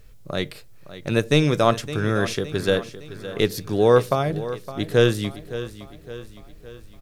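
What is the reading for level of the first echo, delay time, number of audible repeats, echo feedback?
−14.0 dB, 563 ms, 4, 50%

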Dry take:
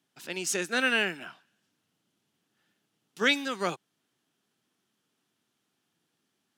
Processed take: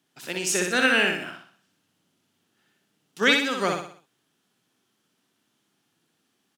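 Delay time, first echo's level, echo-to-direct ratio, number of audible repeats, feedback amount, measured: 61 ms, −4.0 dB, −3.0 dB, 5, 43%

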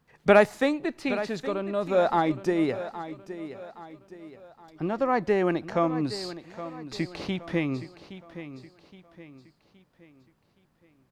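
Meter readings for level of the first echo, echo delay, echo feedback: −13.0 dB, 819 ms, 42%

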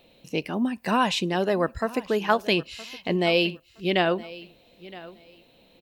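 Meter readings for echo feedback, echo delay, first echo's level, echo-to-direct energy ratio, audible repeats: 20%, 967 ms, −19.0 dB, −19.0 dB, 2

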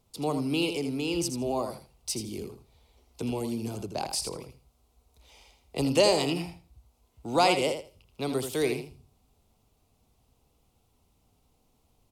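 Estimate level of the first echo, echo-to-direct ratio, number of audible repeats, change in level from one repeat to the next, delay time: −8.0 dB, −8.0 dB, 2, −15.5 dB, 81 ms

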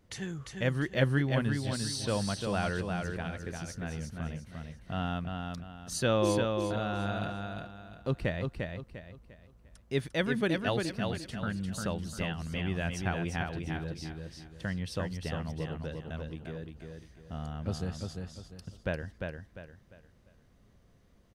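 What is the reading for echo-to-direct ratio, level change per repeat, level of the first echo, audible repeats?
−4.0 dB, −9.5 dB, −4.5 dB, 4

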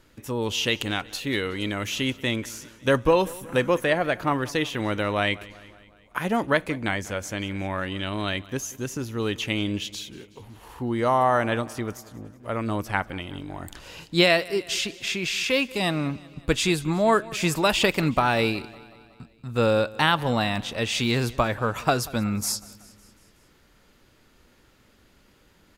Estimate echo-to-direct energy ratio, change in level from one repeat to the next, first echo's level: −19.0 dB, −4.5 dB, −21.0 dB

